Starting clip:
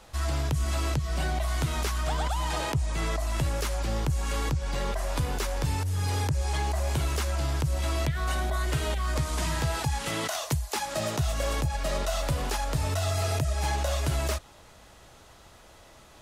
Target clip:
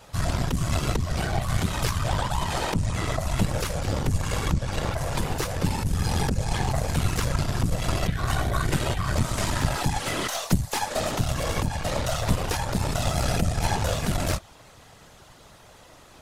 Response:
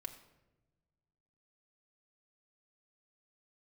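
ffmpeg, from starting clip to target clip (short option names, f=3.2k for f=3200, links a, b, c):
-af "afftfilt=real='hypot(re,im)*cos(2*PI*random(0))':imag='hypot(re,im)*sin(2*PI*random(1))':win_size=512:overlap=0.75,aeval=exprs='0.119*(cos(1*acos(clip(val(0)/0.119,-1,1)))-cos(1*PI/2))+0.0188*(cos(4*acos(clip(val(0)/0.119,-1,1)))-cos(4*PI/2))':c=same,volume=8.5dB"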